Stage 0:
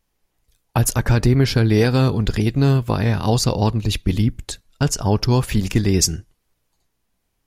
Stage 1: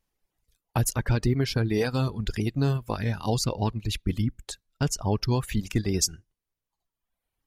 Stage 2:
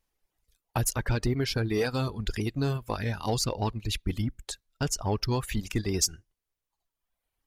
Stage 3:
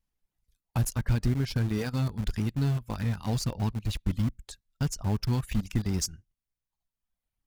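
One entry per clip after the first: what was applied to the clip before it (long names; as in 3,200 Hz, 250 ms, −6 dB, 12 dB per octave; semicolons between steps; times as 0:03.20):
reverb reduction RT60 1.2 s; level −7 dB
parametric band 160 Hz −5 dB 1.7 octaves; in parallel at −8 dB: gain into a clipping stage and back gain 24.5 dB; on the sum: level −2.5 dB
low shelf with overshoot 280 Hz +7.5 dB, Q 1.5; in parallel at −11 dB: bit reduction 4 bits; on the sum: level −8 dB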